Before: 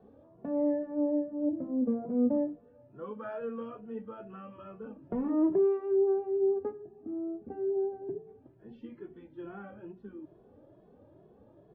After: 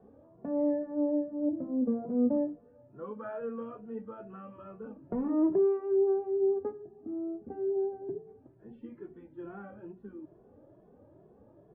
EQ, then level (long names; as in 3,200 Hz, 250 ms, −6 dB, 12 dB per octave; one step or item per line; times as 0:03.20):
low-pass filter 2,000 Hz 12 dB per octave
0.0 dB